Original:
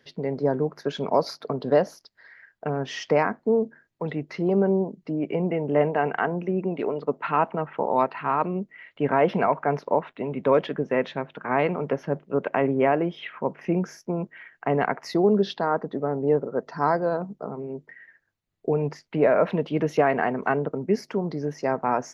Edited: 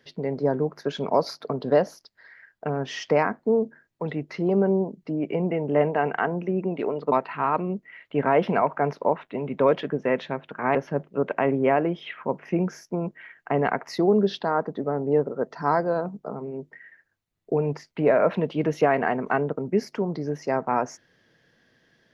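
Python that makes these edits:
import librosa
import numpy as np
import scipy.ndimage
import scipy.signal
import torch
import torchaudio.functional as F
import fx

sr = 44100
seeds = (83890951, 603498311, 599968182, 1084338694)

y = fx.edit(x, sr, fx.cut(start_s=7.12, length_s=0.86),
    fx.cut(start_s=11.61, length_s=0.3), tone=tone)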